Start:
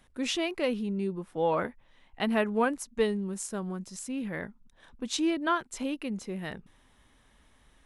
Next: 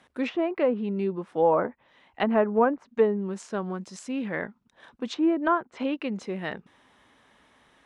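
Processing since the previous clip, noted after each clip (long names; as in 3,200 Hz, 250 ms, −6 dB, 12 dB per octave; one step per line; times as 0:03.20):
meter weighting curve A
treble cut that deepens with the level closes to 1,100 Hz, closed at −28.5 dBFS
spectral tilt −2.5 dB per octave
level +7 dB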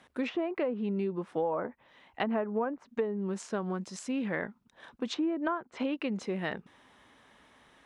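downward compressor 6 to 1, threshold −28 dBFS, peak gain reduction 12 dB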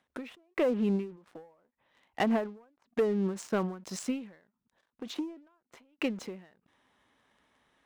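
in parallel at −4 dB: dead-zone distortion −49.5 dBFS
on the sum: leveller curve on the samples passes 2
every ending faded ahead of time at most 120 dB per second
level −6 dB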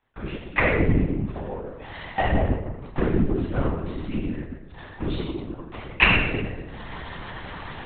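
camcorder AGC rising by 50 dB per second
convolution reverb RT60 1.1 s, pre-delay 3 ms, DRR −13 dB
linear-prediction vocoder at 8 kHz whisper
level −12.5 dB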